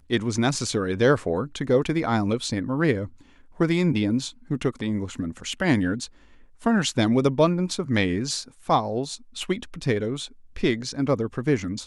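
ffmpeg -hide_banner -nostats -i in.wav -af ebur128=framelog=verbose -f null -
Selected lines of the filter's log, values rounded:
Integrated loudness:
  I:         -24.7 LUFS
  Threshold: -34.9 LUFS
Loudness range:
  LRA:         2.8 LU
  Threshold: -45.0 LUFS
  LRA low:   -26.6 LUFS
  LRA high:  -23.8 LUFS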